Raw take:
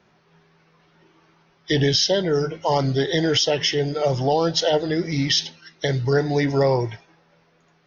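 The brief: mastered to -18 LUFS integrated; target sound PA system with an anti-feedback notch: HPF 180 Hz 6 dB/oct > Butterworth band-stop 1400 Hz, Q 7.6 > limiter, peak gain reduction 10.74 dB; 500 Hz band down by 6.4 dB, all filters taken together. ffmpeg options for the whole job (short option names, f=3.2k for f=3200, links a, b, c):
-af "highpass=f=180:p=1,asuperstop=centerf=1400:order=8:qfactor=7.6,equalizer=f=500:t=o:g=-7,volume=11dB,alimiter=limit=-8.5dB:level=0:latency=1"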